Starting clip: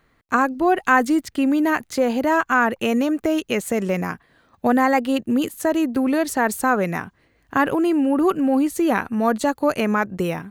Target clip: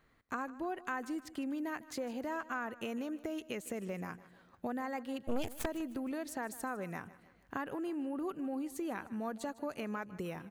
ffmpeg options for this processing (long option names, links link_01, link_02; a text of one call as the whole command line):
ffmpeg -i in.wav -filter_complex "[0:a]acompressor=threshold=-34dB:ratio=2.5,asettb=1/sr,asplit=3[link_01][link_02][link_03];[link_01]atrim=end=5.264[link_04];[link_02]atrim=start=5.26:end=5.66,asetpts=PTS-STARTPTS,afade=type=in:duration=0.004:curve=qsin,afade=type=out:start_time=0.396:duration=0.004:curve=qsin,aeval=exprs='0.133*(cos(1*acos(clip(val(0)/0.133,-1,1)))-cos(1*PI/2))+0.0596*(cos(6*acos(clip(val(0)/0.133,-1,1)))-cos(6*PI/2))':channel_layout=same[link_05];[link_03]atrim=start=5.656[link_06];[link_04][link_05]acrossfade=duration=0.004:curve1=hsin:curve2=qsin[link_07];[link_07][link_06]acrossfade=duration=0.004:curve1=qsin:curve2=hsin,asplit=2[link_08][link_09];[link_09]aecho=0:1:154|308|462|616:0.126|0.0617|0.0302|0.0148[link_10];[link_08][link_10]amix=inputs=2:normalize=0,volume=-8dB" out.wav